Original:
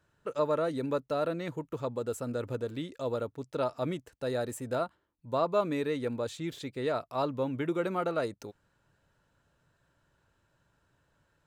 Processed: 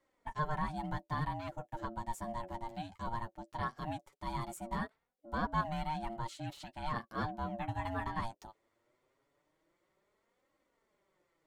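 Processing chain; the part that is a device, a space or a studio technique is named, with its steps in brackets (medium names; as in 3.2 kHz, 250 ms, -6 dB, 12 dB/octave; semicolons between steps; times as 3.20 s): alien voice (ring modulator 460 Hz; flange 0.19 Hz, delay 3.6 ms, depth 7.5 ms, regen +19%)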